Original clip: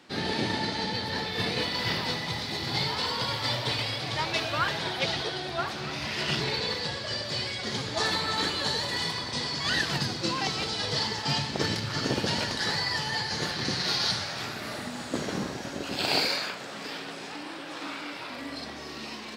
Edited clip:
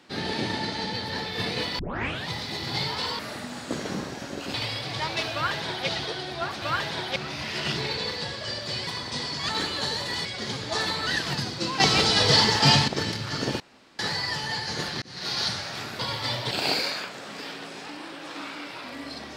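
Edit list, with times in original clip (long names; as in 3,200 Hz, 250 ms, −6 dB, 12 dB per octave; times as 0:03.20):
0:01.79: tape start 0.49 s
0:03.19–0:03.71: swap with 0:14.62–0:15.97
0:04.50–0:05.04: duplicate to 0:05.79
0:07.50–0:08.32: swap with 0:09.08–0:09.70
0:10.43–0:11.51: clip gain +10 dB
0:12.23–0:12.62: fill with room tone
0:13.65–0:14.02: fade in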